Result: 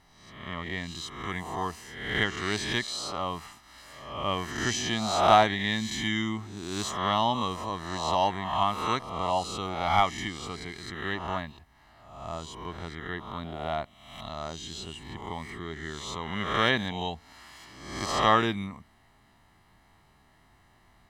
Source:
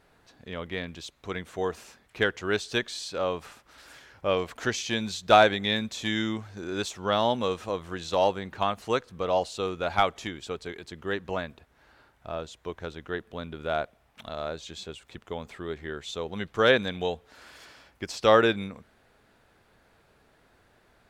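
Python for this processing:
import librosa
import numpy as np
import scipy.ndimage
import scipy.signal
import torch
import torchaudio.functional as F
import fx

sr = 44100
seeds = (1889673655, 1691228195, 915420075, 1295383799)

y = fx.spec_swells(x, sr, rise_s=0.87)
y = y + 0.73 * np.pad(y, (int(1.0 * sr / 1000.0), 0))[:len(y)]
y = y * 10.0 ** (-3.0 / 20.0)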